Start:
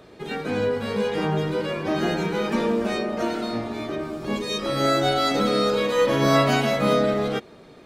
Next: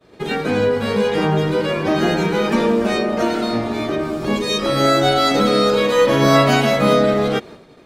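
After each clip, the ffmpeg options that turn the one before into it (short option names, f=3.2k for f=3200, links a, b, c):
-filter_complex "[0:a]agate=range=-33dB:threshold=-40dB:ratio=3:detection=peak,asplit=2[a][b];[b]acompressor=threshold=-29dB:ratio=6,volume=-1.5dB[c];[a][c]amix=inputs=2:normalize=0,volume=4dB"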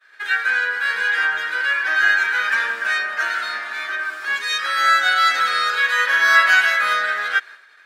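-af "highpass=f=1.6k:t=q:w=9,volume=-3dB"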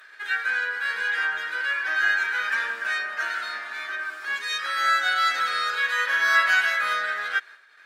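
-af "acompressor=mode=upward:threshold=-34dB:ratio=2.5,volume=-6dB" -ar 48000 -c:a libopus -b:a 96k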